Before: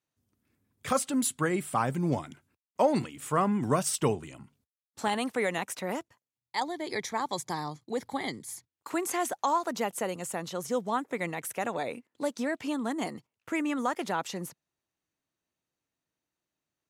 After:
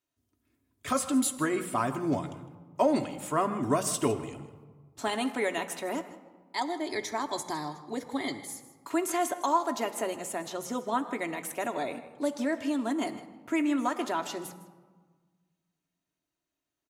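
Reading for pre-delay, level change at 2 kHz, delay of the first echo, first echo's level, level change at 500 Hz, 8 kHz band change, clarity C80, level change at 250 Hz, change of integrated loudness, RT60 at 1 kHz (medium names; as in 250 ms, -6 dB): 3 ms, -0.5 dB, 157 ms, -16.0 dB, 0.0 dB, 0.0 dB, 12.5 dB, +1.5 dB, 0.0 dB, 1.4 s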